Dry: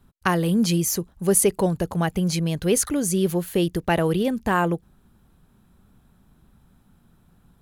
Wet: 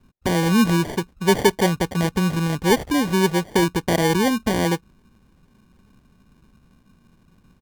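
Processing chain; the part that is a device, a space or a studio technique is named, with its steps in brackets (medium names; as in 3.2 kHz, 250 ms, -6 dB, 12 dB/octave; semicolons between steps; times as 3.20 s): graphic EQ 250/500/1000/2000/8000 Hz +4/+5/-11/+5/-12 dB; crushed at another speed (playback speed 0.8×; sample-and-hold 42×; playback speed 1.25×)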